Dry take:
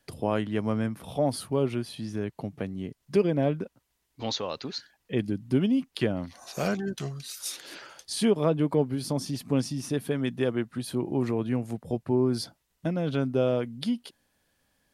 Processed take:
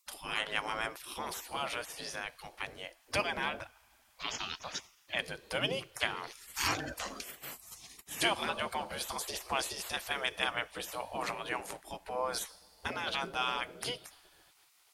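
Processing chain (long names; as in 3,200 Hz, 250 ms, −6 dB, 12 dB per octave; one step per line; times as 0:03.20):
coupled-rooms reverb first 0.58 s, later 3.9 s, from −17 dB, DRR 18.5 dB
gate on every frequency bin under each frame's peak −20 dB weak
level +8.5 dB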